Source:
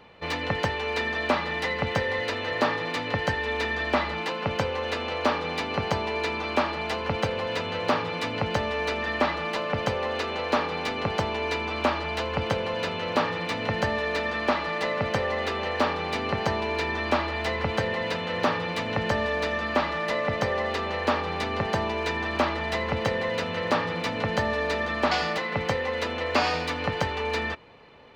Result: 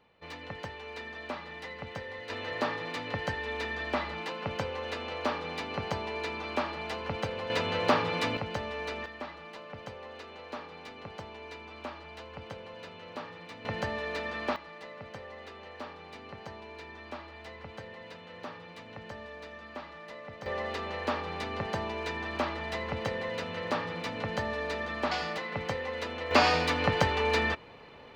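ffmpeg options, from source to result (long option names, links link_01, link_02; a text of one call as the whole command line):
ffmpeg -i in.wav -af "asetnsamples=nb_out_samples=441:pad=0,asendcmd='2.3 volume volume -7dB;7.5 volume volume -0.5dB;8.37 volume volume -8.5dB;9.06 volume volume -16.5dB;13.65 volume volume -7.5dB;14.56 volume volume -18dB;20.46 volume volume -7dB;26.31 volume volume 1dB',volume=-14dB" out.wav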